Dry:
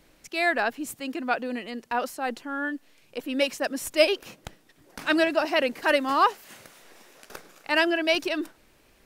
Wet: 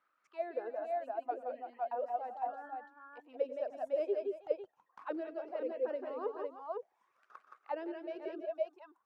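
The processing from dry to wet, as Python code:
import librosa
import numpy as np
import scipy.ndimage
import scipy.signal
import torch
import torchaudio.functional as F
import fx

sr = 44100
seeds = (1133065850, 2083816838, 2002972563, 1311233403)

y = fx.dereverb_blind(x, sr, rt60_s=1.5)
y = fx.echo_multitap(y, sr, ms=(92, 170, 178, 329, 507), db=(-17.5, -5.5, -8.0, -14.0, -5.0))
y = fx.auto_wah(y, sr, base_hz=440.0, top_hz=1300.0, q=10.0, full_db=-20.0, direction='down')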